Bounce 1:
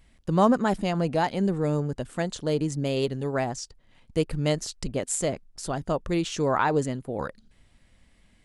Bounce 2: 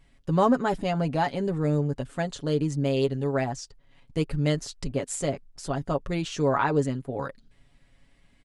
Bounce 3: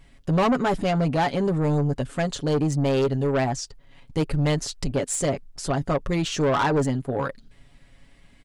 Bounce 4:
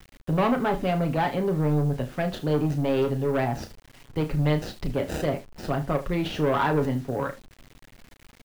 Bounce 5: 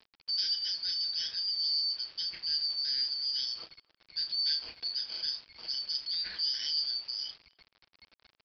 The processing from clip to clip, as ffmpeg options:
-af "highshelf=f=6.8k:g=-7,aecho=1:1:7.2:0.57,volume=-1.5dB"
-af "asoftclip=type=tanh:threshold=-24dB,volume=7dB"
-filter_complex "[0:a]acrossover=split=240|510|4300[a][b][c][d];[d]acrusher=samples=40:mix=1:aa=0.000001[e];[a][b][c][e]amix=inputs=4:normalize=0,aecho=1:1:33|76:0.376|0.15,acrusher=bits=7:mix=0:aa=0.000001,volume=-2.5dB"
-filter_complex "[0:a]afftfilt=real='real(if(lt(b,272),68*(eq(floor(b/68),0)*3+eq(floor(b/68),1)*2+eq(floor(b/68),2)*1+eq(floor(b/68),3)*0)+mod(b,68),b),0)':imag='imag(if(lt(b,272),68*(eq(floor(b/68),0)*3+eq(floor(b/68),1)*2+eq(floor(b/68),2)*1+eq(floor(b/68),3)*0)+mod(b,68),b),0)':win_size=2048:overlap=0.75,aresample=11025,aeval=exprs='val(0)*gte(abs(val(0)),0.00794)':c=same,aresample=44100,asplit=2[a][b];[b]adelay=260,highpass=300,lowpass=3.4k,asoftclip=type=hard:threshold=-19.5dB,volume=-27dB[c];[a][c]amix=inputs=2:normalize=0,volume=-8dB"

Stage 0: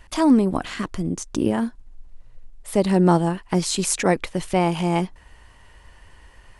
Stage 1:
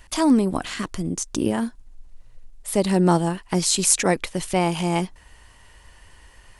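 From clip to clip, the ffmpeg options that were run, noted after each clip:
-af "highshelf=f=3.7k:g=8.5,volume=-1.5dB"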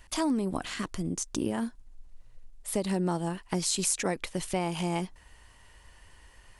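-af "acompressor=threshold=-19dB:ratio=6,volume=-5.5dB"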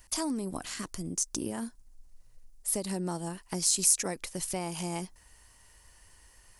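-af "aexciter=amount=3.3:drive=4.3:freq=4.7k,volume=-5dB"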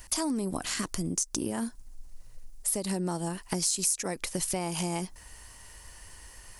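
-af "acompressor=threshold=-38dB:ratio=3,volume=9dB"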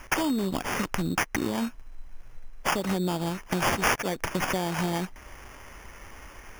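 -af "acrusher=samples=11:mix=1:aa=0.000001,volume=3.5dB"

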